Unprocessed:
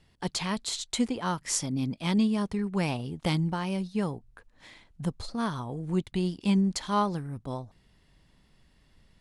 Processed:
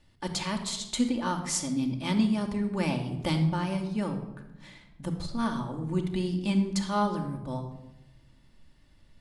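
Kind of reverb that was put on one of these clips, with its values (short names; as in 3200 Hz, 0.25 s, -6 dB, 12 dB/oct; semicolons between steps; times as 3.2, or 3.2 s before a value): shoebox room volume 3600 m³, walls furnished, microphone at 2.5 m; gain -2 dB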